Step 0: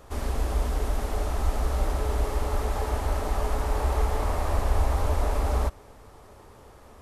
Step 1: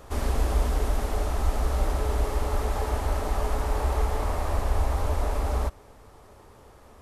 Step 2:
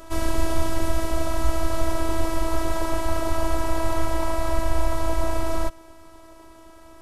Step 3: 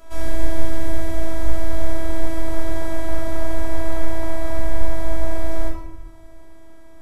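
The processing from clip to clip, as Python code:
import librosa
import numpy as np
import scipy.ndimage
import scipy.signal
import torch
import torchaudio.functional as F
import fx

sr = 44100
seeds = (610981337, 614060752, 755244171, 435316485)

y1 = fx.rider(x, sr, range_db=10, speed_s=2.0)
y2 = fx.robotise(y1, sr, hz=327.0)
y2 = F.gain(torch.from_numpy(y2), 7.0).numpy()
y3 = fx.room_shoebox(y2, sr, seeds[0], volume_m3=400.0, walls='mixed', distance_m=1.7)
y3 = F.gain(torch.from_numpy(y3), -7.5).numpy()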